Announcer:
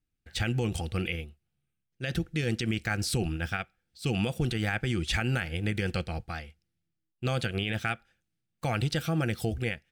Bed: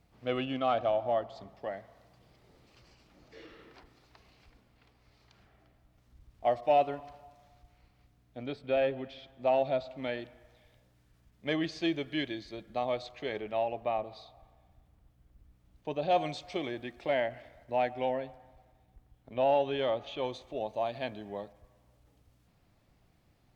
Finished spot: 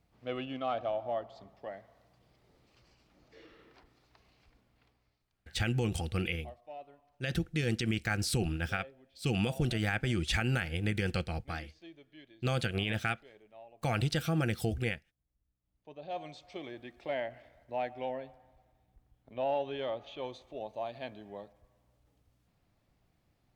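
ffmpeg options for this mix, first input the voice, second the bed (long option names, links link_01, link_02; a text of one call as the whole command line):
ffmpeg -i stem1.wav -i stem2.wav -filter_complex "[0:a]adelay=5200,volume=-2dB[link_01];[1:a]volume=11dB,afade=type=out:start_time=4.84:duration=0.39:silence=0.149624,afade=type=in:start_time=15.6:duration=1.44:silence=0.158489[link_02];[link_01][link_02]amix=inputs=2:normalize=0" out.wav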